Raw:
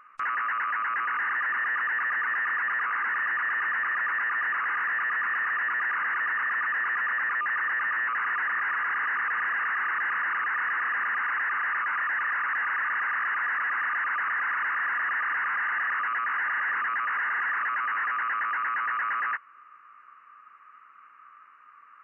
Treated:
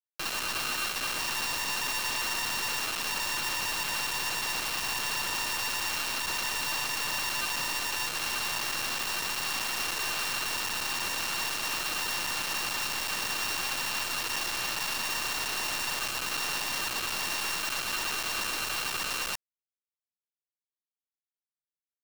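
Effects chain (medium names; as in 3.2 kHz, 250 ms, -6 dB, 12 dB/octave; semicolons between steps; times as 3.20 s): sorted samples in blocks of 16 samples; treble shelf 2.5 kHz -4 dB; peak limiter -27 dBFS, peak gain reduction 3.5 dB; bass shelf 170 Hz -12 dB; band-stop 1.8 kHz, Q 26; feedback delay 65 ms, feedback 38%, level -18.5 dB; bit crusher 5-bit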